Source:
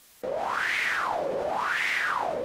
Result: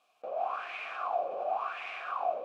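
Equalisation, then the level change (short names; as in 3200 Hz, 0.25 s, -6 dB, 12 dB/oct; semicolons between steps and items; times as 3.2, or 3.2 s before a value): vowel filter a; +3.0 dB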